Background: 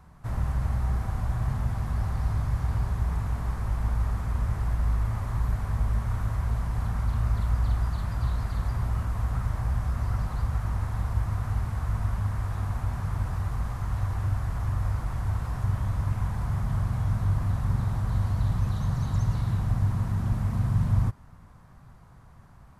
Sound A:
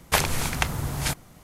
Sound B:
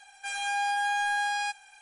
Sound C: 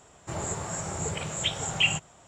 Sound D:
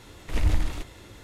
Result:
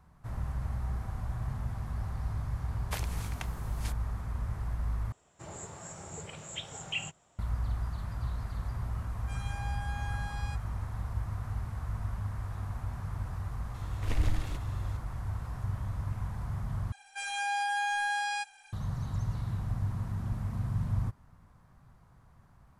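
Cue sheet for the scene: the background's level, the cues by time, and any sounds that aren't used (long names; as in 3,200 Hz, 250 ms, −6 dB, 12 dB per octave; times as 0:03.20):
background −7.5 dB
0:02.79: mix in A −17 dB
0:05.12: overwrite with C −11.5 dB
0:09.04: mix in B −15 dB
0:13.74: mix in D −6 dB
0:16.92: overwrite with B −3 dB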